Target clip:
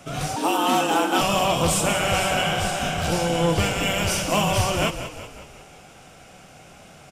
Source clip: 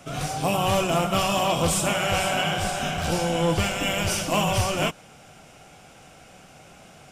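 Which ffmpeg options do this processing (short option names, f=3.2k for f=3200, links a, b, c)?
-filter_complex "[0:a]asplit=7[a][b][c][d][e][f][g];[b]adelay=185,afreqshift=-32,volume=-11dB[h];[c]adelay=370,afreqshift=-64,volume=-16.5dB[i];[d]adelay=555,afreqshift=-96,volume=-22dB[j];[e]adelay=740,afreqshift=-128,volume=-27.5dB[k];[f]adelay=925,afreqshift=-160,volume=-33.1dB[l];[g]adelay=1110,afreqshift=-192,volume=-38.6dB[m];[a][h][i][j][k][l][m]amix=inputs=7:normalize=0,asettb=1/sr,asplit=3[n][o][p];[n]atrim=end=0.364[q];[o]atrim=start=0.36:end=1.21,asetpts=PTS-STARTPTS,afade=t=in:d=0.004:c=qsin,afade=t=out:st=0.846:d=0.004:c=qsin,afreqshift=150[r];[p]atrim=start=1.206[s];[q][r]acrossfade=d=0.004:c1=hsin:c2=qsin[t];[t][s]acrossfade=d=0.004:c1=qsin:c2=hsin,volume=1.5dB"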